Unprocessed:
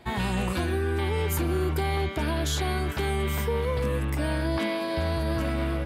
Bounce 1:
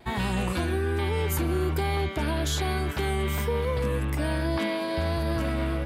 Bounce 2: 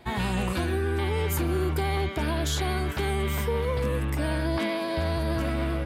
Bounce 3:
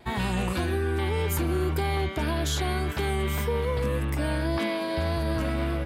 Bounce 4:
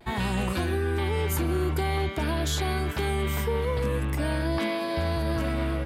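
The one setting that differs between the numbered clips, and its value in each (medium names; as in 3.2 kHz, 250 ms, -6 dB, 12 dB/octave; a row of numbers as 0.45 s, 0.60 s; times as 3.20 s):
vibrato, rate: 1.2 Hz, 13 Hz, 1.8 Hz, 0.46 Hz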